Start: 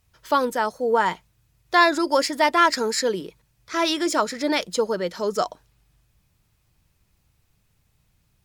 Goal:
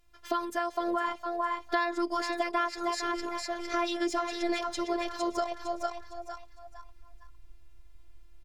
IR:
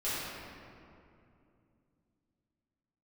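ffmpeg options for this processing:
-filter_complex "[0:a]asplit=5[link_01][link_02][link_03][link_04][link_05];[link_02]adelay=457,afreqshift=97,volume=-7dB[link_06];[link_03]adelay=914,afreqshift=194,volume=-17.2dB[link_07];[link_04]adelay=1371,afreqshift=291,volume=-27.3dB[link_08];[link_05]adelay=1828,afreqshift=388,volume=-37.5dB[link_09];[link_01][link_06][link_07][link_08][link_09]amix=inputs=5:normalize=0,alimiter=limit=-10dB:level=0:latency=1:release=255,afftfilt=real='hypot(re,im)*cos(PI*b)':imag='0':win_size=512:overlap=0.75,asubboost=boost=8.5:cutoff=68,acompressor=threshold=-32dB:ratio=3,aemphasis=mode=reproduction:type=cd,volume=4dB"

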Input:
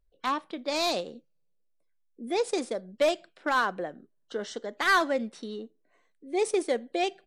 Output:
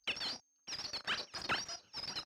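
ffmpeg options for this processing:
ffmpeg -i in.wav -filter_complex "[0:a]afftfilt=real='real(if(between(b,1,1012),(2*floor((b-1)/92)+1)*92-b,b),0)':imag='imag(if(between(b,1,1012),(2*floor((b-1)/92)+1)*92-b,b),0)*if(between(b,1,1012),-1,1)':win_size=2048:overlap=0.75,deesser=0.8,bandreject=frequency=60:width_type=h:width=6,bandreject=frequency=120:width_type=h:width=6,bandreject=frequency=180:width_type=h:width=6,acompressor=threshold=-29dB:ratio=2.5,aresample=11025,asoftclip=type=hard:threshold=-38.5dB,aresample=44100,asetrate=142002,aresample=44100,asplit=2[link_01][link_02];[link_02]acrusher=bits=4:dc=4:mix=0:aa=0.000001,volume=-4.5dB[link_03];[link_01][link_03]amix=inputs=2:normalize=0,highpass=100,lowpass=2800,asplit=2[link_04][link_05];[link_05]adelay=35,volume=-13dB[link_06];[link_04][link_06]amix=inputs=2:normalize=0,aecho=1:1:598|1196|1794:0.0891|0.033|0.0122,volume=6dB" out.wav

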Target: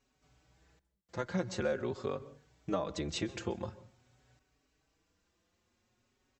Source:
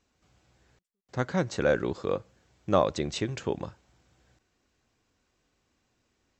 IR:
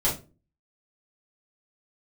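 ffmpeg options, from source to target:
-filter_complex "[0:a]acompressor=threshold=-27dB:ratio=6,asplit=2[link_01][link_02];[1:a]atrim=start_sample=2205,adelay=124[link_03];[link_02][link_03]afir=irnorm=-1:irlink=0,volume=-29.5dB[link_04];[link_01][link_04]amix=inputs=2:normalize=0,asplit=2[link_05][link_06];[link_06]adelay=4.9,afreqshift=0.47[link_07];[link_05][link_07]amix=inputs=2:normalize=1"

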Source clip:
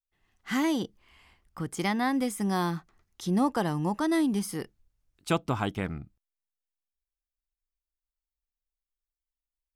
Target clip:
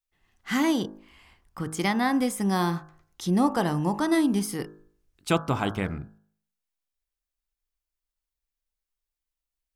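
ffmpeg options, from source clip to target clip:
ffmpeg -i in.wav -af "bandreject=frequency=52.55:width_type=h:width=4,bandreject=frequency=105.1:width_type=h:width=4,bandreject=frequency=157.65:width_type=h:width=4,bandreject=frequency=210.2:width_type=h:width=4,bandreject=frequency=262.75:width_type=h:width=4,bandreject=frequency=315.3:width_type=h:width=4,bandreject=frequency=367.85:width_type=h:width=4,bandreject=frequency=420.4:width_type=h:width=4,bandreject=frequency=472.95:width_type=h:width=4,bandreject=frequency=525.5:width_type=h:width=4,bandreject=frequency=578.05:width_type=h:width=4,bandreject=frequency=630.6:width_type=h:width=4,bandreject=frequency=683.15:width_type=h:width=4,bandreject=frequency=735.7:width_type=h:width=4,bandreject=frequency=788.25:width_type=h:width=4,bandreject=frequency=840.8:width_type=h:width=4,bandreject=frequency=893.35:width_type=h:width=4,bandreject=frequency=945.9:width_type=h:width=4,bandreject=frequency=998.45:width_type=h:width=4,bandreject=frequency=1051:width_type=h:width=4,bandreject=frequency=1103.55:width_type=h:width=4,bandreject=frequency=1156.1:width_type=h:width=4,bandreject=frequency=1208.65:width_type=h:width=4,bandreject=frequency=1261.2:width_type=h:width=4,bandreject=frequency=1313.75:width_type=h:width=4,bandreject=frequency=1366.3:width_type=h:width=4,bandreject=frequency=1418.85:width_type=h:width=4,bandreject=frequency=1471.4:width_type=h:width=4,bandreject=frequency=1523.95:width_type=h:width=4,bandreject=frequency=1576.5:width_type=h:width=4,bandreject=frequency=1629.05:width_type=h:width=4,bandreject=frequency=1681.6:width_type=h:width=4,bandreject=frequency=1734.15:width_type=h:width=4,volume=3.5dB" out.wav

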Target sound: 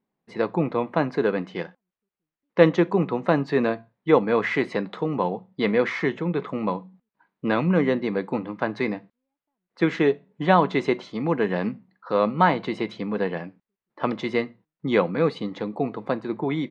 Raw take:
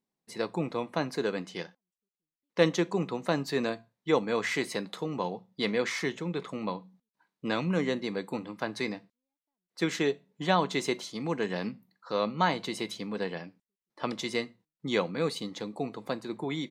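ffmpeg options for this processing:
ffmpeg -i in.wav -af "lowpass=2100,volume=8dB" out.wav

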